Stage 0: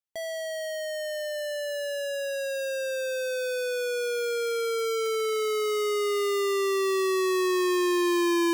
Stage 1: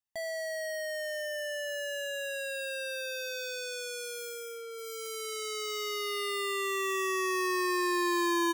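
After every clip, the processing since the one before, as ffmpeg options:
ffmpeg -i in.wav -af "bandreject=frequency=4200:width=20,aecho=1:1:1.1:0.71,volume=-3.5dB" out.wav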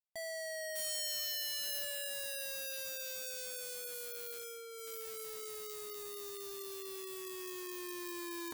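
ffmpeg -i in.wav -af "aeval=exprs='(mod(33.5*val(0)+1,2)-1)/33.5':channel_layout=same,highshelf=frequency=4200:gain=7.5,acrusher=bits=8:mix=0:aa=0.000001,volume=-7dB" out.wav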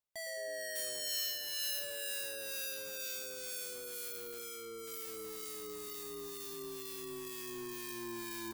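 ffmpeg -i in.wav -filter_complex "[0:a]asplit=6[link_01][link_02][link_03][link_04][link_05][link_06];[link_02]adelay=106,afreqshift=-120,volume=-9.5dB[link_07];[link_03]adelay=212,afreqshift=-240,volume=-16.6dB[link_08];[link_04]adelay=318,afreqshift=-360,volume=-23.8dB[link_09];[link_05]adelay=424,afreqshift=-480,volume=-30.9dB[link_10];[link_06]adelay=530,afreqshift=-600,volume=-38dB[link_11];[link_01][link_07][link_08][link_09][link_10][link_11]amix=inputs=6:normalize=0,acrossover=split=1300[link_12][link_13];[link_12]aeval=exprs='val(0)*(1-0.5/2+0.5/2*cos(2*PI*2.1*n/s))':channel_layout=same[link_14];[link_13]aeval=exprs='val(0)*(1-0.5/2-0.5/2*cos(2*PI*2.1*n/s))':channel_layout=same[link_15];[link_14][link_15]amix=inputs=2:normalize=0,areverse,acompressor=mode=upward:threshold=-44dB:ratio=2.5,areverse,volume=2dB" out.wav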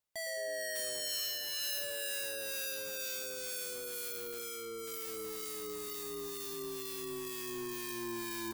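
ffmpeg -i in.wav -af "asoftclip=type=tanh:threshold=-30dB,volume=3.5dB" out.wav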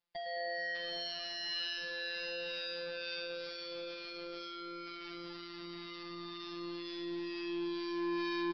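ffmpeg -i in.wav -filter_complex "[0:a]afftfilt=real='hypot(re,im)*cos(PI*b)':imag='0':win_size=1024:overlap=0.75,asplit=2[link_01][link_02];[link_02]aecho=0:1:775:0.266[link_03];[link_01][link_03]amix=inputs=2:normalize=0,aresample=11025,aresample=44100,volume=5dB" out.wav

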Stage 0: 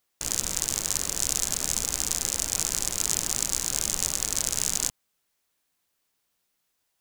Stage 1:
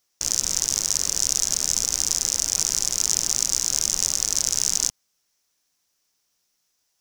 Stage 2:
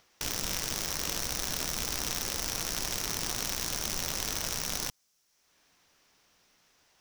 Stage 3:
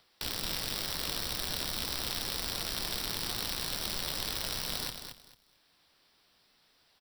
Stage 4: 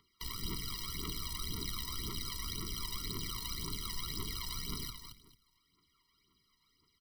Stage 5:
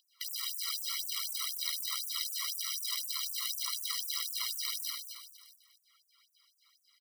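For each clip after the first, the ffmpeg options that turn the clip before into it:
ffmpeg -i in.wav -filter_complex "[0:a]equalizer=frequency=5700:width_type=o:width=0.6:gain=12,asplit=2[link_01][link_02];[link_02]alimiter=limit=-6dB:level=0:latency=1,volume=0dB[link_03];[link_01][link_03]amix=inputs=2:normalize=0,volume=-6dB" out.wav
ffmpeg -i in.wav -filter_complex "[0:a]acrossover=split=3500[link_01][link_02];[link_01]acompressor=mode=upward:threshold=-56dB:ratio=2.5[link_03];[link_02]aeval=exprs='0.1*(abs(mod(val(0)/0.1+3,4)-2)-1)':channel_layout=same[link_04];[link_03][link_04]amix=inputs=2:normalize=0" out.wav
ffmpeg -i in.wav -filter_complex "[0:a]acrossover=split=220|1400|5600[link_01][link_02][link_03][link_04];[link_03]aexciter=amount=1.8:drive=7.2:freq=3500[link_05];[link_01][link_02][link_05][link_04]amix=inputs=4:normalize=0,aecho=1:1:222|444|666:0.398|0.0876|0.0193,volume=-2.5dB" out.wav
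ffmpeg -i in.wav -af "aphaser=in_gain=1:out_gain=1:delay=1.2:decay=0.67:speed=1.9:type=triangular,afftfilt=real='re*eq(mod(floor(b*sr/1024/470),2),0)':imag='im*eq(mod(floor(b*sr/1024/470),2),0)':win_size=1024:overlap=0.75,volume=-6dB" out.wav
ffmpeg -i in.wav -filter_complex "[0:a]asplit=2[link_01][link_02];[link_02]aecho=0:1:50|125|237.5|406.2|659.4:0.631|0.398|0.251|0.158|0.1[link_03];[link_01][link_03]amix=inputs=2:normalize=0,afftfilt=real='re*gte(b*sr/1024,960*pow(6500/960,0.5+0.5*sin(2*PI*4*pts/sr)))':imag='im*gte(b*sr/1024,960*pow(6500/960,0.5+0.5*sin(2*PI*4*pts/sr)))':win_size=1024:overlap=0.75,volume=5.5dB" out.wav

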